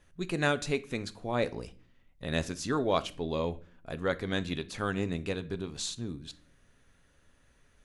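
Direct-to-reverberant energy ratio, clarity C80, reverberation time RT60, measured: 11.5 dB, 24.0 dB, 0.45 s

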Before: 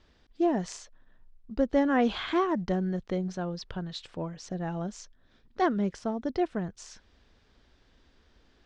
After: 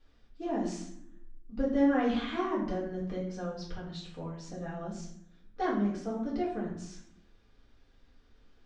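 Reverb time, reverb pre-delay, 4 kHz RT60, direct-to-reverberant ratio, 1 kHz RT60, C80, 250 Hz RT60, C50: 0.70 s, 3 ms, 0.45 s, -6.5 dB, 0.65 s, 8.0 dB, 1.1 s, 4.5 dB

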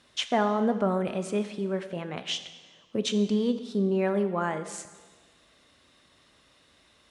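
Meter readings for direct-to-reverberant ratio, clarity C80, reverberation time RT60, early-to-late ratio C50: 9.0 dB, 12.5 dB, 1.4 s, 11.0 dB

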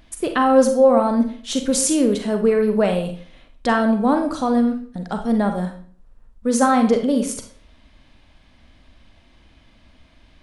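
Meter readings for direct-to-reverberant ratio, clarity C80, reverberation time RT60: 5.0 dB, 12.5 dB, 0.45 s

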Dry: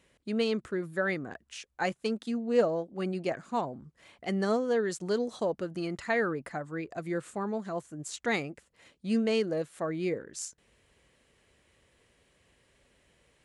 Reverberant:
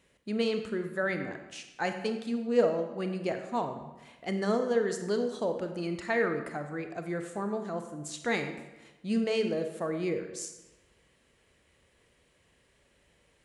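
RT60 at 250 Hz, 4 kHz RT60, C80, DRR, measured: 1.1 s, 0.80 s, 9.5 dB, 6.0 dB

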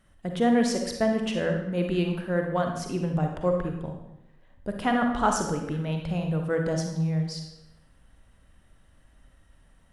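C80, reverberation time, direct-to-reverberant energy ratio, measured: 7.5 dB, 0.90 s, 3.0 dB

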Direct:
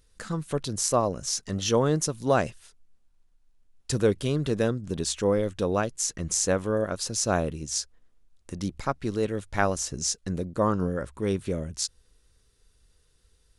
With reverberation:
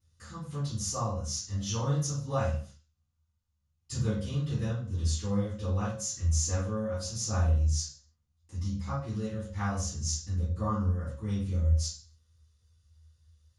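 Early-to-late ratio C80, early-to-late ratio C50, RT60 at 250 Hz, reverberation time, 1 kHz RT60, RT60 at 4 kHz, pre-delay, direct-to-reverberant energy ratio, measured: 8.5 dB, 2.5 dB, 0.65 s, 0.45 s, 0.45 s, 0.40 s, 3 ms, -14.5 dB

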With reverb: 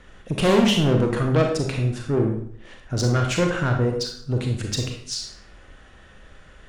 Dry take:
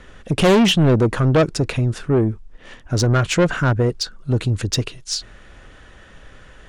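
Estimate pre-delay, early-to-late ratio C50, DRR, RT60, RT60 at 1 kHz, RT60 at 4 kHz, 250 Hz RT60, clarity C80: 30 ms, 4.5 dB, 2.0 dB, 0.60 s, 0.55 s, 0.50 s, 0.65 s, 8.5 dB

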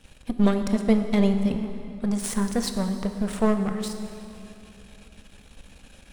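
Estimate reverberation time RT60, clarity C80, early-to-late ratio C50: 2.9 s, 8.5 dB, 7.5 dB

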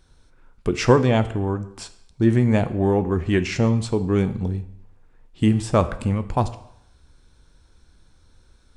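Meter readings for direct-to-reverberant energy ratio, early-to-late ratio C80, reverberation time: 10.5 dB, 16.5 dB, 0.75 s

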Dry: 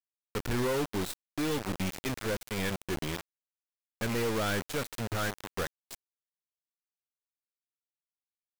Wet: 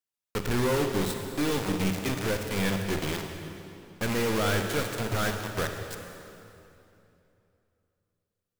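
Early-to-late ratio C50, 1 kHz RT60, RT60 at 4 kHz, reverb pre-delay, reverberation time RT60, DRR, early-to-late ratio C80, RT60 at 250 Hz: 4.5 dB, 2.7 s, 2.4 s, 34 ms, 2.9 s, 4.0 dB, 5.5 dB, 3.2 s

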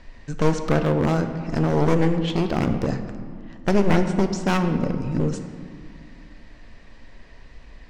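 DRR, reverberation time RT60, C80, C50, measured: 7.0 dB, 2.2 s, 9.5 dB, 8.5 dB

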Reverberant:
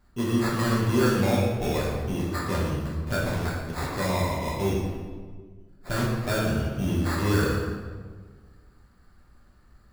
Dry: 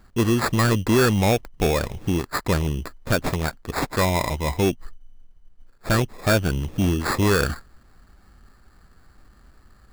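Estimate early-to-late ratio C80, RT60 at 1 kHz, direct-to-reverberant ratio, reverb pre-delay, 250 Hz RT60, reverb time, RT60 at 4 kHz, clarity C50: 2.0 dB, 1.4 s, -6.0 dB, 4 ms, 2.0 s, 1.6 s, 1.0 s, 0.0 dB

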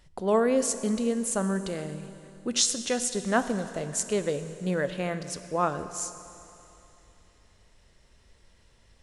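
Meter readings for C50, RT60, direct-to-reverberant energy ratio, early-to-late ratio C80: 11.5 dB, 3.0 s, 10.5 dB, 12.0 dB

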